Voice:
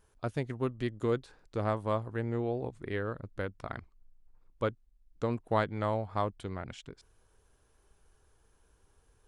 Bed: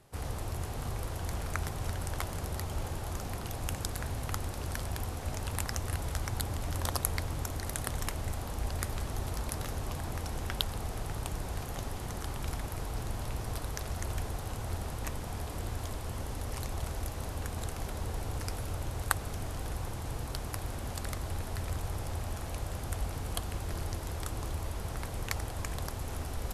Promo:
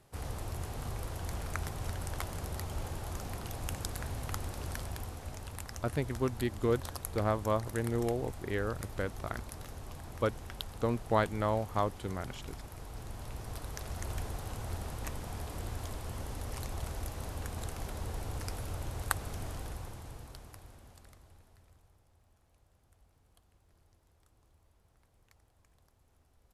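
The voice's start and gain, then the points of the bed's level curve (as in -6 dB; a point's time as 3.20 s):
5.60 s, +0.5 dB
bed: 4.69 s -2.5 dB
5.60 s -9 dB
12.76 s -9 dB
14.13 s -2.5 dB
19.51 s -2.5 dB
22.06 s -31.5 dB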